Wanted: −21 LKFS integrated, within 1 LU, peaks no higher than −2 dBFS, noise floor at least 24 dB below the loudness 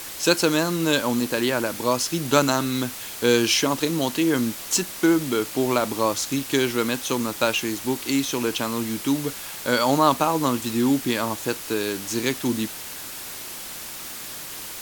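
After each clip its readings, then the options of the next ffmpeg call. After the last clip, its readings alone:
background noise floor −36 dBFS; target noise floor −48 dBFS; integrated loudness −23.5 LKFS; sample peak −2.0 dBFS; target loudness −21.0 LKFS
→ -af "afftdn=noise_reduction=12:noise_floor=-36"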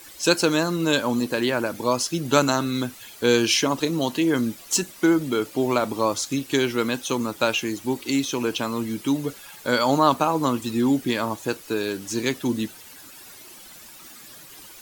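background noise floor −45 dBFS; target noise floor −48 dBFS
→ -af "afftdn=noise_reduction=6:noise_floor=-45"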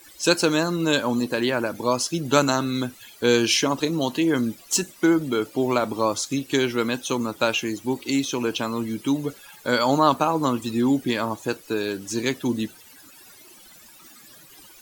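background noise floor −49 dBFS; integrated loudness −23.5 LKFS; sample peak −2.0 dBFS; target loudness −21.0 LKFS
→ -af "volume=2.5dB,alimiter=limit=-2dB:level=0:latency=1"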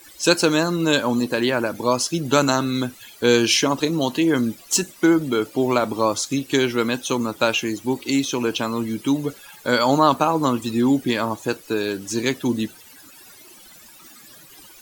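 integrated loudness −21.0 LKFS; sample peak −2.0 dBFS; background noise floor −46 dBFS

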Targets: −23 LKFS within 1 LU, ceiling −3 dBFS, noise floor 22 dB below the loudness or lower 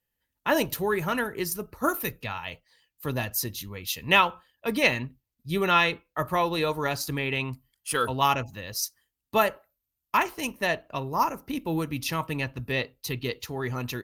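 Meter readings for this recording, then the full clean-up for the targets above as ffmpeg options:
integrated loudness −27.5 LKFS; sample peak −5.5 dBFS; target loudness −23.0 LKFS
→ -af "volume=4.5dB,alimiter=limit=-3dB:level=0:latency=1"

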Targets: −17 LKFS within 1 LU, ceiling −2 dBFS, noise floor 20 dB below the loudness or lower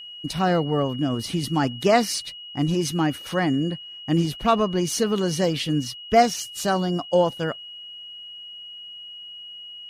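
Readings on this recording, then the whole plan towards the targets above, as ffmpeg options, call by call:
interfering tone 2,900 Hz; level of the tone −37 dBFS; integrated loudness −23.5 LKFS; sample peak −3.5 dBFS; target loudness −17.0 LKFS
→ -af "bandreject=frequency=2900:width=30"
-af "volume=6.5dB,alimiter=limit=-2dB:level=0:latency=1"

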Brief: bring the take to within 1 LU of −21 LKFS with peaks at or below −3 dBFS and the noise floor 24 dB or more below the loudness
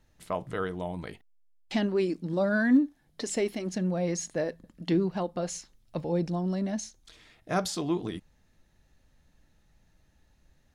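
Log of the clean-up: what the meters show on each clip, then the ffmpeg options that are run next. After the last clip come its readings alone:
integrated loudness −30.0 LKFS; sample peak −13.5 dBFS; target loudness −21.0 LKFS
→ -af "volume=9dB"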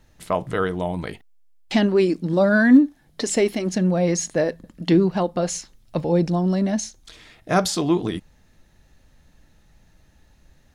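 integrated loudness −21.0 LKFS; sample peak −4.5 dBFS; background noise floor −58 dBFS

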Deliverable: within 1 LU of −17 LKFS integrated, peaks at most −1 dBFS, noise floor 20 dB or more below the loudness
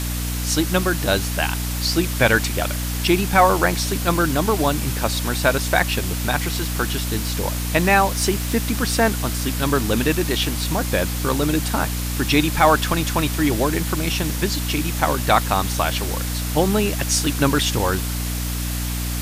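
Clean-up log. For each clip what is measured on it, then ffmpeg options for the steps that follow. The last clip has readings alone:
mains hum 60 Hz; hum harmonics up to 300 Hz; level of the hum −23 dBFS; background noise floor −25 dBFS; target noise floor −41 dBFS; integrated loudness −20.5 LKFS; sample peak −2.0 dBFS; target loudness −17.0 LKFS
→ -af "bandreject=frequency=60:width_type=h:width=6,bandreject=frequency=120:width_type=h:width=6,bandreject=frequency=180:width_type=h:width=6,bandreject=frequency=240:width_type=h:width=6,bandreject=frequency=300:width_type=h:width=6"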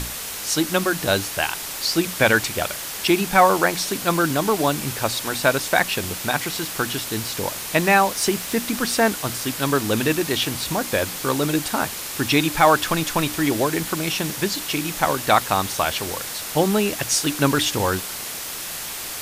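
mains hum none found; background noise floor −31 dBFS; target noise floor −41 dBFS
→ -af "afftdn=noise_reduction=10:noise_floor=-31"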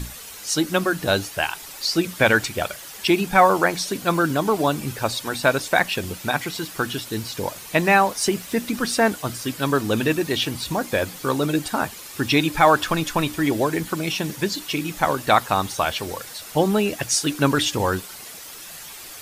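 background noise floor −39 dBFS; target noise floor −42 dBFS
→ -af "afftdn=noise_reduction=6:noise_floor=-39"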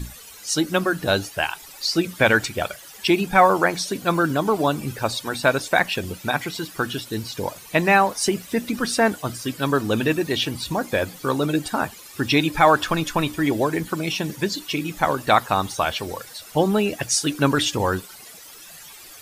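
background noise floor −43 dBFS; integrated loudness −22.0 LKFS; sample peak −3.0 dBFS; target loudness −17.0 LKFS
→ -af "volume=5dB,alimiter=limit=-1dB:level=0:latency=1"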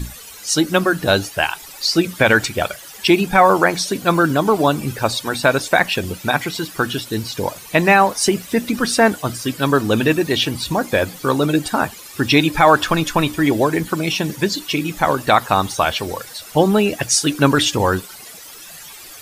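integrated loudness −17.5 LKFS; sample peak −1.0 dBFS; background noise floor −38 dBFS

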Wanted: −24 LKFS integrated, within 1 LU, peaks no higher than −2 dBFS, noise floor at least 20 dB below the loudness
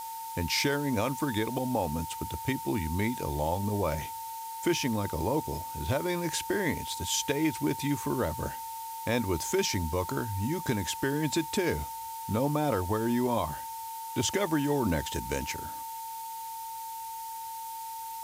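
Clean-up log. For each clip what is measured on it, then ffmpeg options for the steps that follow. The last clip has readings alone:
interfering tone 900 Hz; level of the tone −37 dBFS; background noise floor −39 dBFS; target noise floor −51 dBFS; integrated loudness −31.0 LKFS; sample peak −16.5 dBFS; target loudness −24.0 LKFS
→ -af "bandreject=frequency=900:width=30"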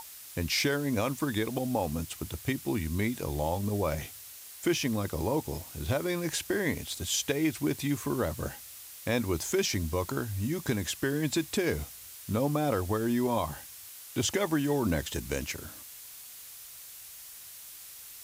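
interfering tone none found; background noise floor −47 dBFS; target noise floor −51 dBFS
→ -af "afftdn=noise_reduction=6:noise_floor=-47"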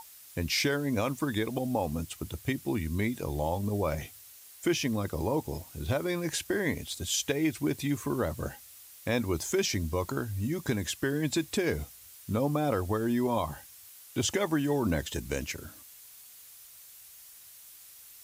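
background noise floor −52 dBFS; integrated loudness −31.0 LKFS; sample peak −17.0 dBFS; target loudness −24.0 LKFS
→ -af "volume=7dB"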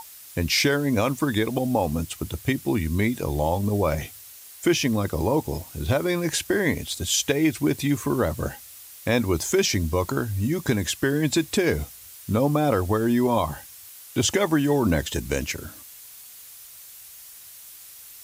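integrated loudness −24.0 LKFS; sample peak −10.0 dBFS; background noise floor −45 dBFS

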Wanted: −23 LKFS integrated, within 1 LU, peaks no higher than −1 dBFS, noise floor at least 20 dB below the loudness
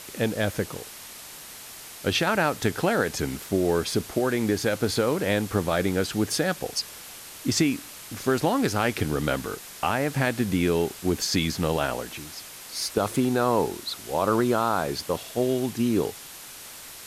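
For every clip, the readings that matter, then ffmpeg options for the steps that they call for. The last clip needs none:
background noise floor −43 dBFS; target noise floor −46 dBFS; integrated loudness −26.0 LKFS; sample peak −9.5 dBFS; target loudness −23.0 LKFS
→ -af "afftdn=noise_reduction=6:noise_floor=-43"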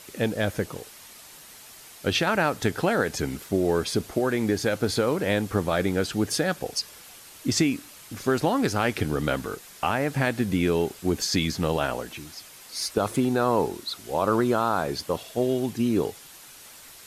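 background noise floor −47 dBFS; integrated loudness −26.0 LKFS; sample peak −10.0 dBFS; target loudness −23.0 LKFS
→ -af "volume=3dB"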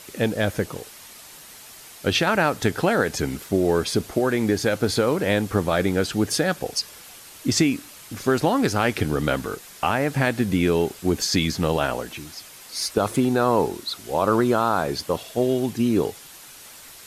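integrated loudness −23.0 LKFS; sample peak −7.0 dBFS; background noise floor −44 dBFS

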